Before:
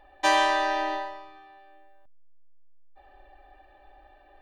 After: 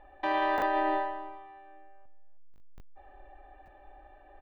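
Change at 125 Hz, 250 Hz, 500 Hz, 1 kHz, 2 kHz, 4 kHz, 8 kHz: no reading, +0.5 dB, -2.5 dB, -3.5 dB, -7.0 dB, -14.0 dB, under -25 dB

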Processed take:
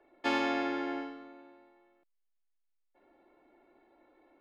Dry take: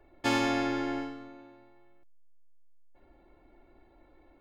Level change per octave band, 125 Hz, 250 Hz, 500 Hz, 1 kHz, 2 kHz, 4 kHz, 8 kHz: under -15 dB, -4.0 dB, -2.0 dB, -1.5 dB, -2.0 dB, -4.0 dB, under -10 dB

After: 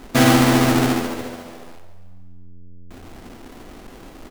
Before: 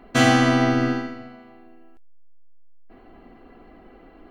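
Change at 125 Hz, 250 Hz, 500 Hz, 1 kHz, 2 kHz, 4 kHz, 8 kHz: +4.0 dB, +3.5 dB, +3.0 dB, +2.0 dB, +0.5 dB, +3.5 dB, +7.5 dB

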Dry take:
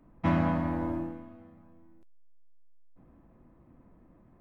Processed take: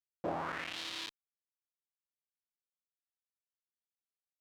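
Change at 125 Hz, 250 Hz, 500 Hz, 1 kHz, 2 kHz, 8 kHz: -22.0 dB, -18.5 dB, -7.0 dB, -6.5 dB, -1.5 dB, no reading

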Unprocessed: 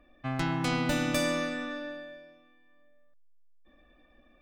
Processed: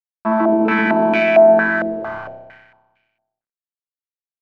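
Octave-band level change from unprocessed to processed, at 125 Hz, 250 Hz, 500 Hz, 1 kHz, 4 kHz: +1.5 dB, +13.0 dB, +21.5 dB, +17.5 dB, no reading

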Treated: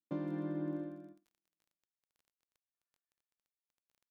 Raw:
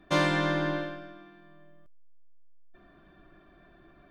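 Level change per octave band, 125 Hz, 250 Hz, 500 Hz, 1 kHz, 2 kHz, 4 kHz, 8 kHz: -11.5 dB, -7.0 dB, -14.5 dB, -22.5 dB, -28.5 dB, under -30 dB, no reading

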